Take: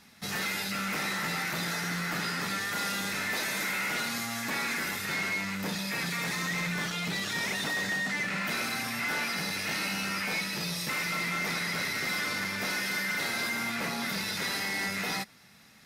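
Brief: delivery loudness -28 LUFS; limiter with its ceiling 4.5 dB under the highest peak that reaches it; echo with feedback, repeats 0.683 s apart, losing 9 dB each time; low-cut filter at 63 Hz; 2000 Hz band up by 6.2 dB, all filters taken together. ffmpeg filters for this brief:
-af "highpass=63,equalizer=f=2k:t=o:g=7,alimiter=limit=-23dB:level=0:latency=1,aecho=1:1:683|1366|2049|2732:0.355|0.124|0.0435|0.0152"

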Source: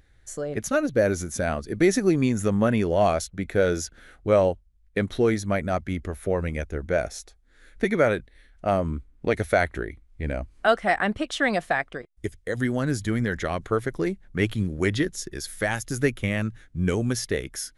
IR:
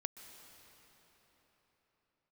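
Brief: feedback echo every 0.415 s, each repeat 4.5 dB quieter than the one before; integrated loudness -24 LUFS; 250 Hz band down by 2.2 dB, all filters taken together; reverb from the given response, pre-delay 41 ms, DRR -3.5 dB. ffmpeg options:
-filter_complex "[0:a]equalizer=f=250:t=o:g=-3,aecho=1:1:415|830|1245|1660|2075|2490|2905|3320|3735:0.596|0.357|0.214|0.129|0.0772|0.0463|0.0278|0.0167|0.01,asplit=2[a][b];[1:a]atrim=start_sample=2205,adelay=41[c];[b][c]afir=irnorm=-1:irlink=0,volume=5.5dB[d];[a][d]amix=inputs=2:normalize=0,volume=-4.5dB"

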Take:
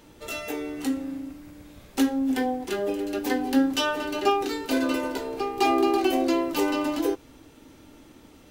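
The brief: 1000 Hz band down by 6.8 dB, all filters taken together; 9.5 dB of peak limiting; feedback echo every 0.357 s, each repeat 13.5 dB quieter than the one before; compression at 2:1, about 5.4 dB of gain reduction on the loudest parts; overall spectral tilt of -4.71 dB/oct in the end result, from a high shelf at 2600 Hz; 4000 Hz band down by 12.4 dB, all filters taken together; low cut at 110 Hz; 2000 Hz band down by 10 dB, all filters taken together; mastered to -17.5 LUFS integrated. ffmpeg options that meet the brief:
-af "highpass=110,equalizer=f=1k:t=o:g=-7,equalizer=f=2k:t=o:g=-5.5,highshelf=f=2.6k:g=-7,equalizer=f=4k:t=o:g=-8.5,acompressor=threshold=-27dB:ratio=2,alimiter=level_in=2.5dB:limit=-24dB:level=0:latency=1,volume=-2.5dB,aecho=1:1:357|714:0.211|0.0444,volume=17dB"

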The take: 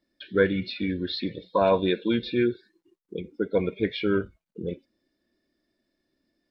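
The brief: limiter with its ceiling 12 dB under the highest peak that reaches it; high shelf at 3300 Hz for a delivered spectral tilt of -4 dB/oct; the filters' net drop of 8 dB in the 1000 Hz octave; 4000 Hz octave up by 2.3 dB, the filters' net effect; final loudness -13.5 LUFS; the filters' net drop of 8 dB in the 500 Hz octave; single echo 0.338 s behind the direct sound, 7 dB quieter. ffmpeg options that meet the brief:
-af "equalizer=f=500:t=o:g=-9,equalizer=f=1k:t=o:g=-6.5,highshelf=f=3.3k:g=-8,equalizer=f=4k:t=o:g=8,alimiter=level_in=1.5dB:limit=-24dB:level=0:latency=1,volume=-1.5dB,aecho=1:1:338:0.447,volume=22.5dB"

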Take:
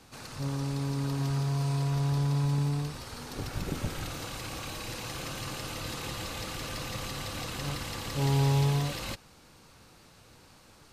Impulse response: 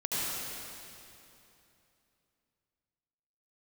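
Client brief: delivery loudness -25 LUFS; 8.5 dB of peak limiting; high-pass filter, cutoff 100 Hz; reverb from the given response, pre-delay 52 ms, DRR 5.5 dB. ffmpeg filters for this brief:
-filter_complex "[0:a]highpass=100,alimiter=level_in=2.5dB:limit=-24dB:level=0:latency=1,volume=-2.5dB,asplit=2[a][b];[1:a]atrim=start_sample=2205,adelay=52[c];[b][c]afir=irnorm=-1:irlink=0,volume=-13.5dB[d];[a][d]amix=inputs=2:normalize=0,volume=10dB"

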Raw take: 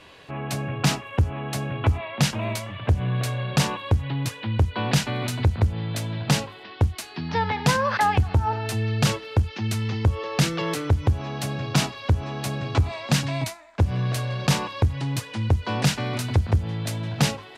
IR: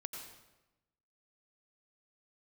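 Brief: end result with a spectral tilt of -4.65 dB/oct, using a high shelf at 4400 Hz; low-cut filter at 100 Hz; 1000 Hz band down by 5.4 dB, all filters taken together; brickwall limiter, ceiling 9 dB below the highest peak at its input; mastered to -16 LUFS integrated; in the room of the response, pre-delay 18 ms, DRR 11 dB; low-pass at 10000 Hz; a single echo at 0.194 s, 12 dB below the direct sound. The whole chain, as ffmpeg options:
-filter_complex "[0:a]highpass=100,lowpass=10k,equalizer=f=1k:t=o:g=-7,highshelf=f=4.4k:g=5.5,alimiter=limit=-17.5dB:level=0:latency=1,aecho=1:1:194:0.251,asplit=2[a][b];[1:a]atrim=start_sample=2205,adelay=18[c];[b][c]afir=irnorm=-1:irlink=0,volume=-9dB[d];[a][d]amix=inputs=2:normalize=0,volume=12.5dB"

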